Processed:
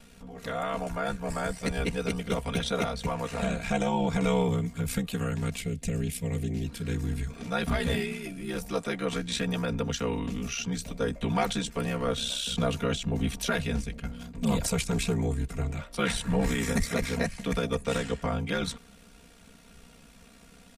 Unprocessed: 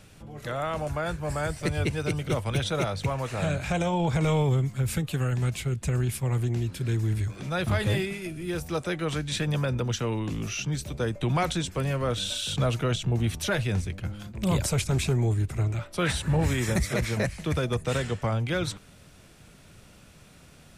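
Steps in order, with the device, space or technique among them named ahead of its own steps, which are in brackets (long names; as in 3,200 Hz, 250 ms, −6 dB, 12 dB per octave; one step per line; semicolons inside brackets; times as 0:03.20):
0:05.61–0:06.64: flat-topped bell 1,100 Hz −10.5 dB 1.2 octaves
ring-modulated robot voice (ring modulation 32 Hz; comb filter 4.3 ms, depth 77%)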